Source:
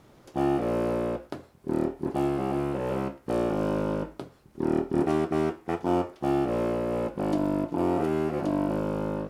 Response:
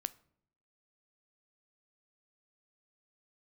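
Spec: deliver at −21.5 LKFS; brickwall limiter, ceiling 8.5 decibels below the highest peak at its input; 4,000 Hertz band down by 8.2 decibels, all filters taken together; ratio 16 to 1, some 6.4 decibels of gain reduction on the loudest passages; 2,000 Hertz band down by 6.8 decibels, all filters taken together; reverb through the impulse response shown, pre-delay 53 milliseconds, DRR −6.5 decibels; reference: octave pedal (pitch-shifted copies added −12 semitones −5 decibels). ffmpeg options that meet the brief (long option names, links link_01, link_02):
-filter_complex "[0:a]equalizer=frequency=2000:width_type=o:gain=-7.5,equalizer=frequency=4000:width_type=o:gain=-8.5,acompressor=threshold=-27dB:ratio=16,alimiter=level_in=2.5dB:limit=-24dB:level=0:latency=1,volume=-2.5dB,asplit=2[link_01][link_02];[1:a]atrim=start_sample=2205,adelay=53[link_03];[link_02][link_03]afir=irnorm=-1:irlink=0,volume=7.5dB[link_04];[link_01][link_04]amix=inputs=2:normalize=0,asplit=2[link_05][link_06];[link_06]asetrate=22050,aresample=44100,atempo=2,volume=-5dB[link_07];[link_05][link_07]amix=inputs=2:normalize=0,volume=7dB"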